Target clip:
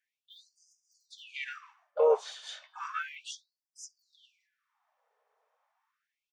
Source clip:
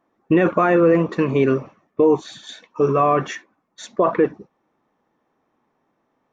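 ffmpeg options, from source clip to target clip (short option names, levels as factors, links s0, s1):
-filter_complex "[0:a]bandreject=f=171.5:t=h:w=4,bandreject=f=343:t=h:w=4,bandreject=f=514.5:t=h:w=4,bandreject=f=686:t=h:w=4,bandreject=f=857.5:t=h:w=4,bandreject=f=1029:t=h:w=4,bandreject=f=1200.5:t=h:w=4,bandreject=f=1372:t=h:w=4,bandreject=f=1543.5:t=h:w=4,bandreject=f=1715:t=h:w=4,bandreject=f=1886.5:t=h:w=4,bandreject=f=2058:t=h:w=4,bandreject=f=2229.5:t=h:w=4,bandreject=f=2401:t=h:w=4,bandreject=f=2572.5:t=h:w=4,bandreject=f=2744:t=h:w=4,bandreject=f=2915.5:t=h:w=4,bandreject=f=3087:t=h:w=4,bandreject=f=3258.5:t=h:w=4,bandreject=f=3430:t=h:w=4,bandreject=f=3601.5:t=h:w=4,bandreject=f=3773:t=h:w=4,bandreject=f=3944.5:t=h:w=4,bandreject=f=4116:t=h:w=4,bandreject=f=4287.5:t=h:w=4,bandreject=f=4459:t=h:w=4,asplit=4[s0][s1][s2][s3];[s1]asetrate=37084,aresample=44100,atempo=1.18921,volume=0.447[s4];[s2]asetrate=52444,aresample=44100,atempo=0.840896,volume=0.224[s5];[s3]asetrate=58866,aresample=44100,atempo=0.749154,volume=0.251[s6];[s0][s4][s5][s6]amix=inputs=4:normalize=0,afftfilt=real='re*gte(b*sr/1024,390*pow(4900/390,0.5+0.5*sin(2*PI*0.33*pts/sr)))':imag='im*gte(b*sr/1024,390*pow(4900/390,0.5+0.5*sin(2*PI*0.33*pts/sr)))':win_size=1024:overlap=0.75,volume=0.473"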